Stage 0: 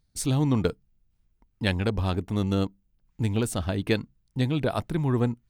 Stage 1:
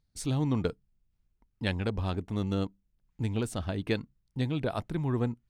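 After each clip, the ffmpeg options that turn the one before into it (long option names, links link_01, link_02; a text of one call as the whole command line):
ffmpeg -i in.wav -af "highshelf=frequency=11000:gain=-11,volume=-5dB" out.wav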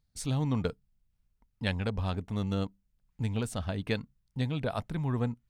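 ffmpeg -i in.wav -af "equalizer=frequency=340:width_type=o:width=0.39:gain=-9" out.wav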